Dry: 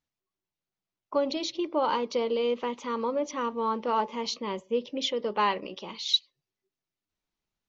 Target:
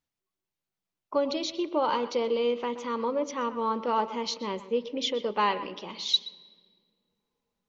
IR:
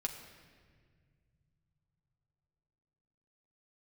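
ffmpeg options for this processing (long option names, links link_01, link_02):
-filter_complex "[0:a]asplit=2[link_01][link_02];[1:a]atrim=start_sample=2205,lowpass=4200,adelay=125[link_03];[link_02][link_03]afir=irnorm=-1:irlink=0,volume=-14dB[link_04];[link_01][link_04]amix=inputs=2:normalize=0"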